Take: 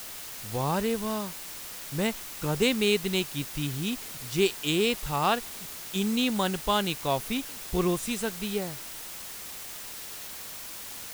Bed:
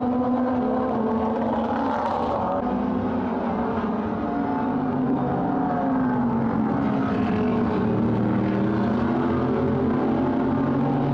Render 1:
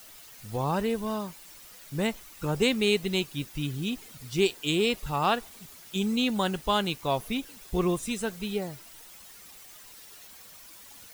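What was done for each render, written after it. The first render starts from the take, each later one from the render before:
broadband denoise 11 dB, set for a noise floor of −41 dBFS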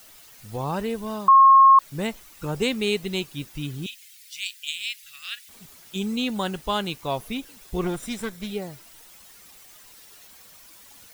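0:01.28–0:01.79: beep over 1,080 Hz −9 dBFS
0:03.86–0:05.49: inverse Chebyshev high-pass filter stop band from 980 Hz
0:07.84–0:08.51: lower of the sound and its delayed copy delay 0.54 ms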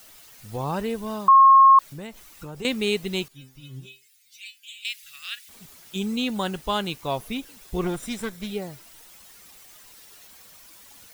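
0:01.90–0:02.65: downward compressor 2.5 to 1, threshold −37 dBFS
0:03.28–0:04.85: stiff-string resonator 130 Hz, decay 0.33 s, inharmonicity 0.002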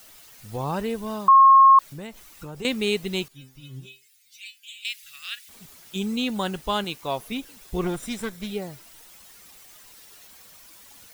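0:06.84–0:07.32: low-shelf EQ 170 Hz −8 dB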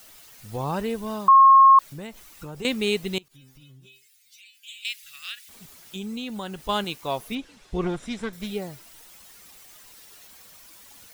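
0:03.18–0:04.58: downward compressor 8 to 1, threshold −47 dBFS
0:05.31–0:06.69: downward compressor 2 to 1, threshold −34 dBFS
0:07.35–0:08.33: high-frequency loss of the air 83 metres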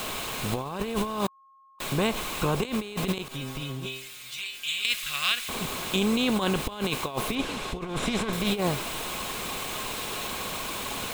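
compressor on every frequency bin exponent 0.6
compressor whose output falls as the input rises −29 dBFS, ratio −0.5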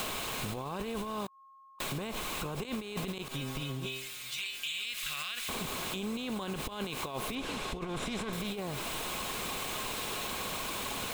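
brickwall limiter −20.5 dBFS, peak gain reduction 11 dB
downward compressor, threshold −33 dBFS, peak gain reduction 7.5 dB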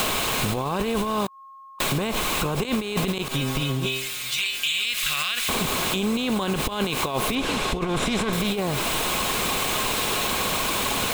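level +12 dB

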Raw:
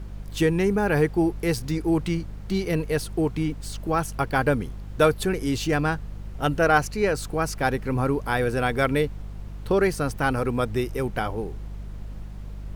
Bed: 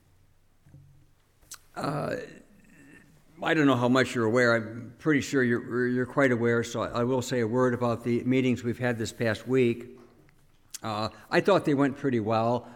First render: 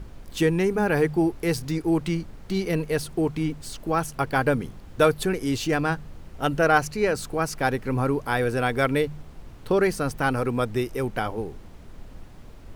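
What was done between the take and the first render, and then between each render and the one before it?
hum removal 50 Hz, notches 4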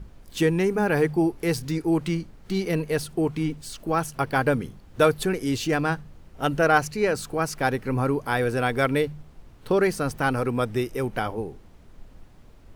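noise reduction from a noise print 6 dB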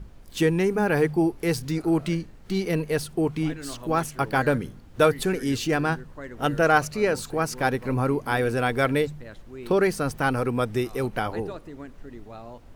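mix in bed −16.5 dB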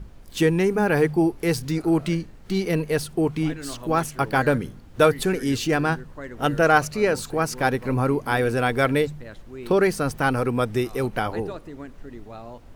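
level +2 dB

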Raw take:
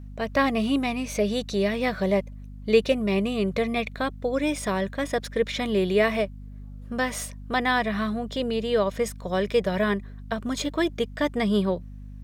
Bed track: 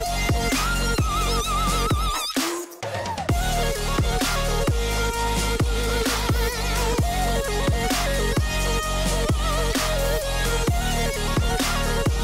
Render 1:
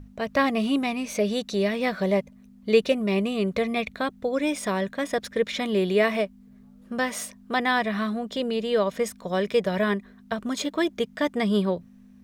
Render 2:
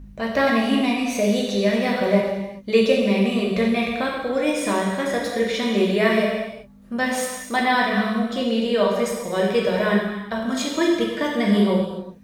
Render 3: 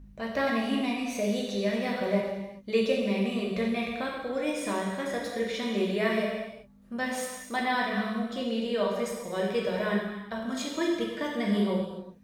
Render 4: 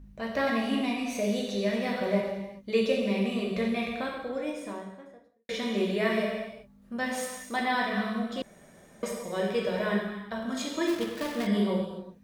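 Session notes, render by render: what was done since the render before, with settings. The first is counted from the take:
mains-hum notches 50/100/150 Hz
reverb whose tail is shaped and stops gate 430 ms falling, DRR −3 dB
level −8.5 dB
0:03.88–0:05.49: fade out and dull; 0:08.42–0:09.03: fill with room tone; 0:10.87–0:11.47: gap after every zero crossing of 0.18 ms

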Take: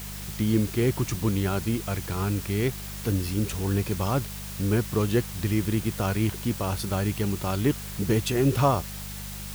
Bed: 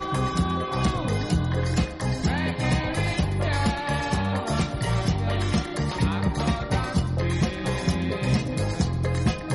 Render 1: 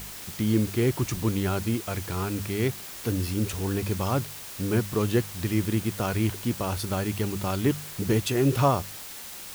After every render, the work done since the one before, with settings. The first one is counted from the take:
hum removal 50 Hz, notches 4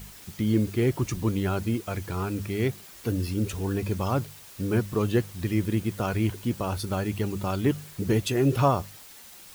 broadband denoise 8 dB, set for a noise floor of −40 dBFS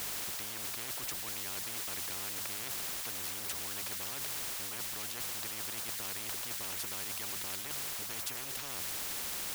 reversed playback
downward compressor, threshold −34 dBFS, peak gain reduction 16.5 dB
reversed playback
every bin compressed towards the loudest bin 10 to 1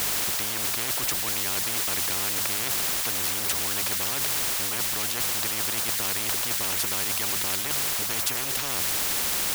level +12 dB

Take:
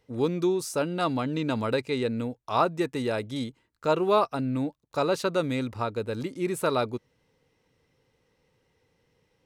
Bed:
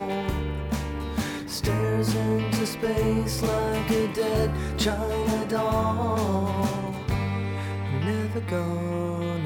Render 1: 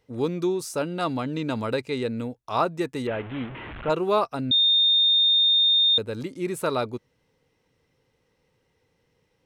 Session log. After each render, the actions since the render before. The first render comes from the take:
0:03.07–0:03.90: linear delta modulator 16 kbit/s, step −31.5 dBFS
0:04.51–0:05.98: beep over 3,650 Hz −16 dBFS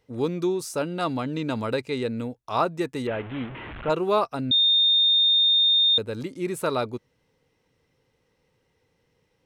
no processing that can be heard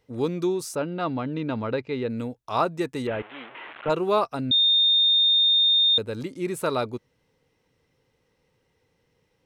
0:00.75–0:02.10: high-frequency loss of the air 230 metres
0:03.22–0:03.86: band-pass filter 580–7,100 Hz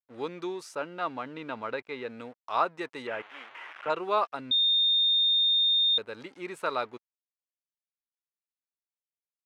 dead-zone distortion −51.5 dBFS
resonant band-pass 1,600 Hz, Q 0.7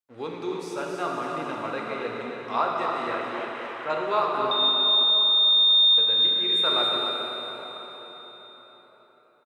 on a send: single-tap delay 277 ms −7 dB
on the sum: dense smooth reverb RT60 4.7 s, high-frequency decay 0.85×, DRR −2 dB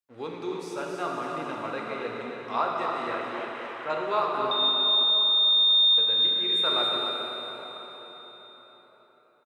level −2 dB

